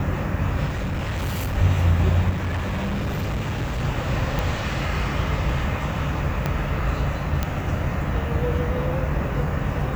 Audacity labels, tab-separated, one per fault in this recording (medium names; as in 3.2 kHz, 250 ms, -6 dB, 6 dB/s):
0.670000	1.580000	clipped -22.5 dBFS
2.290000	3.850000	clipped -22 dBFS
4.390000	4.390000	pop
6.460000	6.460000	pop -10 dBFS
7.430000	7.430000	pop -9 dBFS